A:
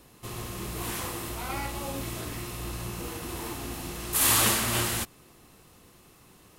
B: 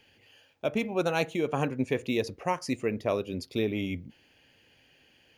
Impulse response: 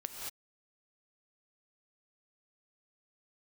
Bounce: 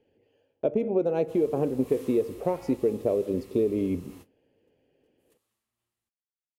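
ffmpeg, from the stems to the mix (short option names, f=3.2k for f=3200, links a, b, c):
-filter_complex "[0:a]bandreject=f=1.5k:w=14,adelay=1050,volume=-17dB[a];[1:a]firequalizer=gain_entry='entry(100,0);entry(430,12);entry(750,0);entry(1200,-10);entry(4600,-16)':delay=0.05:min_phase=1,acompressor=threshold=-23dB:ratio=6,volume=0.5dB,asplit=3[b][c][d];[c]volume=-13.5dB[e];[d]apad=whole_len=336720[f];[a][f]sidechaingate=range=-33dB:threshold=-55dB:ratio=16:detection=peak[g];[2:a]atrim=start_sample=2205[h];[e][h]afir=irnorm=-1:irlink=0[i];[g][b][i]amix=inputs=3:normalize=0,agate=range=-9dB:threshold=-48dB:ratio=16:detection=peak"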